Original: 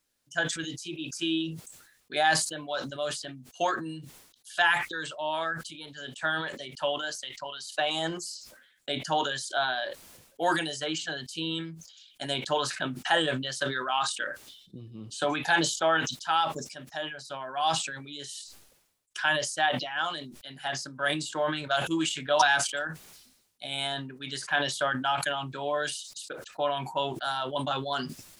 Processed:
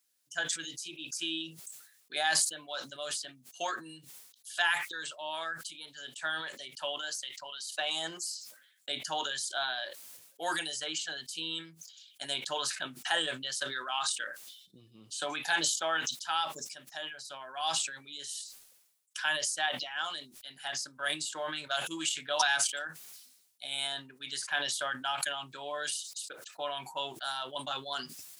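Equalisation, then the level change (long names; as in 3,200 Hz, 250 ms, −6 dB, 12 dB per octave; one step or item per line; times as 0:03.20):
spectral tilt +3 dB per octave
−7.0 dB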